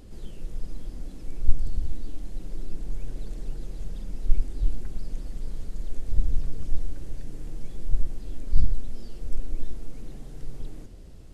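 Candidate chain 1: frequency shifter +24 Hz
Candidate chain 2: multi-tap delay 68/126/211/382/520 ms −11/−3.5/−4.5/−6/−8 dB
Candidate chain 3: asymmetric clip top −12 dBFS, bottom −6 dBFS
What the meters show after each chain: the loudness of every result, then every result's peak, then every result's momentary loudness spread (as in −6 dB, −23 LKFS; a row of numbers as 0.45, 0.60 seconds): −27.5, −33.5, −38.0 LKFS; −2.5, −2.5, −5.5 dBFS; 15, 11, 11 LU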